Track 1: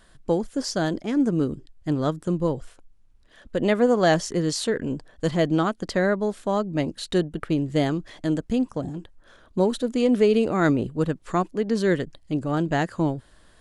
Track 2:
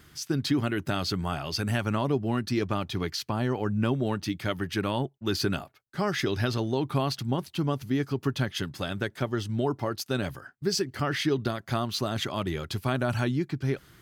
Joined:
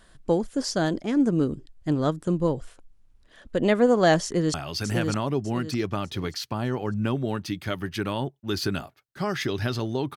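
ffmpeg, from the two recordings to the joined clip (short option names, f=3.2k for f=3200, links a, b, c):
-filter_complex "[0:a]apad=whole_dur=10.16,atrim=end=10.16,atrim=end=4.542[a];[1:a]atrim=start=1.318:end=6.94[b];[a][b]acrossfade=d=0.004:c1=hsin:c2=hsin,asplit=2[c][d];[d]afade=t=in:st=4.24:d=0.01,afade=t=out:st=4.54:d=0.01,aecho=0:1:600|1200|1800|2400:0.630957|0.220835|0.0772923|0.0270523[e];[c][e]amix=inputs=2:normalize=0"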